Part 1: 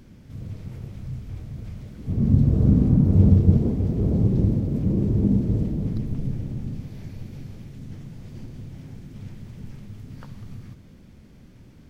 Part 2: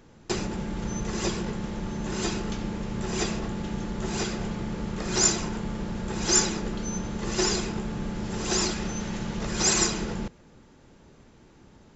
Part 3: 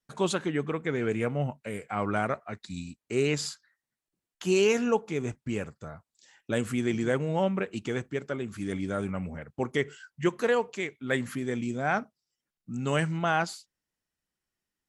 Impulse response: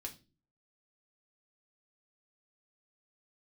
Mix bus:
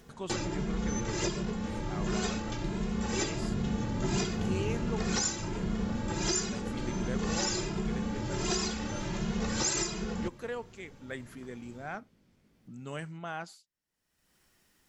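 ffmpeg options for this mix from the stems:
-filter_complex "[0:a]lowshelf=f=180:g=-11,flanger=delay=18:depth=3.5:speed=2.2,adelay=1200,volume=0.335[s0];[1:a]asplit=2[s1][s2];[s2]adelay=2.4,afreqshift=1.4[s3];[s1][s3]amix=inputs=2:normalize=1,volume=1.19[s4];[2:a]acompressor=mode=upward:threshold=0.0282:ratio=2.5,volume=0.237[s5];[s0][s4][s5]amix=inputs=3:normalize=0,alimiter=limit=0.106:level=0:latency=1:release=489"

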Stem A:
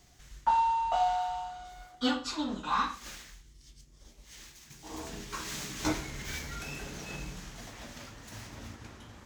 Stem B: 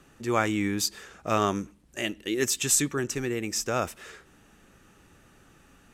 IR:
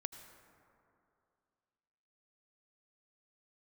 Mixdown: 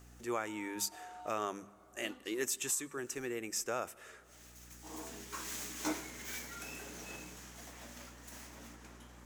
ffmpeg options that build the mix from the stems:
-filter_complex "[0:a]highpass=f=210:w=0.5412,highpass=f=210:w=1.3066,highshelf=f=4400:g=8.5,aeval=exprs='val(0)+0.00282*(sin(2*PI*60*n/s)+sin(2*PI*2*60*n/s)/2+sin(2*PI*3*60*n/s)/3+sin(2*PI*4*60*n/s)/4+sin(2*PI*5*60*n/s)/5)':c=same,volume=0.562[s0];[1:a]bass=f=250:g=-12,treble=f=4000:g=3,bandreject=f=50:t=h:w=6,bandreject=f=100:t=h:w=6,bandreject=f=150:t=h:w=6,bandreject=f=200:t=h:w=6,volume=0.398,asplit=3[s1][s2][s3];[s2]volume=0.266[s4];[s3]apad=whole_len=408301[s5];[s0][s5]sidechaincompress=threshold=0.001:ratio=3:attack=16:release=410[s6];[2:a]atrim=start_sample=2205[s7];[s4][s7]afir=irnorm=-1:irlink=0[s8];[s6][s1][s8]amix=inputs=3:normalize=0,equalizer=f=4300:t=o:w=1.2:g=-6.5,alimiter=limit=0.0708:level=0:latency=1:release=477"

